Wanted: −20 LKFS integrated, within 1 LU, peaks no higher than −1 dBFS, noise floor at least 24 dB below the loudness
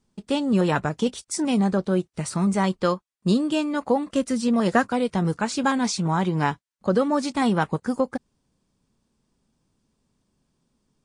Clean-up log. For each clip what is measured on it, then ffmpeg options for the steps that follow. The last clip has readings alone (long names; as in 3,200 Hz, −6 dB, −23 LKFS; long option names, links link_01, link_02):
integrated loudness −24.0 LKFS; sample peak −6.5 dBFS; target loudness −20.0 LKFS
→ -af "volume=4dB"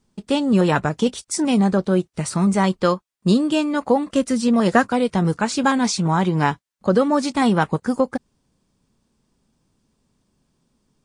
integrated loudness −20.0 LKFS; sample peak −2.5 dBFS; background noise floor −71 dBFS